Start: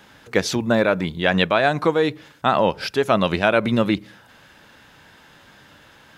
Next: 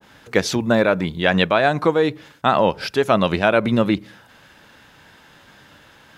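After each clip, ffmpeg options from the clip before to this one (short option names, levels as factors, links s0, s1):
-af "agate=range=0.0224:threshold=0.00398:ratio=3:detection=peak,adynamicequalizer=threshold=0.0355:dfrequency=1500:dqfactor=0.7:tfrequency=1500:tqfactor=0.7:attack=5:release=100:ratio=0.375:range=1.5:mode=cutabove:tftype=highshelf,volume=1.19"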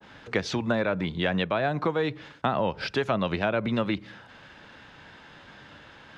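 -filter_complex "[0:a]lowpass=4400,acrossover=split=160|670[s0][s1][s2];[s0]acompressor=threshold=0.0178:ratio=4[s3];[s1]acompressor=threshold=0.0355:ratio=4[s4];[s2]acompressor=threshold=0.0355:ratio=4[s5];[s3][s4][s5]amix=inputs=3:normalize=0"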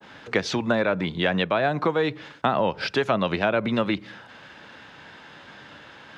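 -af "highpass=f=150:p=1,volume=1.58"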